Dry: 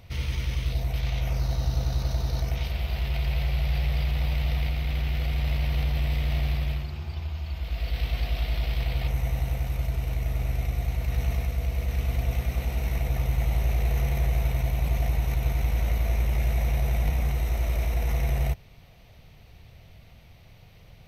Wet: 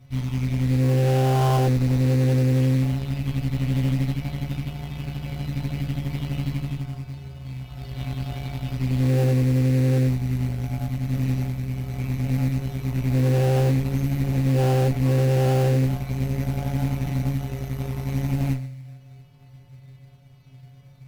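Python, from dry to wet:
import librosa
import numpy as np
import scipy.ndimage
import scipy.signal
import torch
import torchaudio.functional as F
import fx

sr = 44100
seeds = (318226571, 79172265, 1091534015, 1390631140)

p1 = fx.peak_eq(x, sr, hz=160.0, db=12.5, octaves=1.3)
p2 = fx.stiff_resonator(p1, sr, f0_hz=130.0, decay_s=0.78, stiffness=0.008)
p3 = p2 + 10.0 ** (-21.0 / 20.0) * np.pad(p2, (int(130 * sr / 1000.0), 0))[:len(p2)]
p4 = fx.sample_hold(p3, sr, seeds[0], rate_hz=2200.0, jitter_pct=20)
p5 = p3 + F.gain(torch.from_numpy(p4), -3.0).numpy()
y = fx.cheby_harmonics(p5, sr, harmonics=(5, 8), levels_db=(-10, -8), full_scale_db=-14.5)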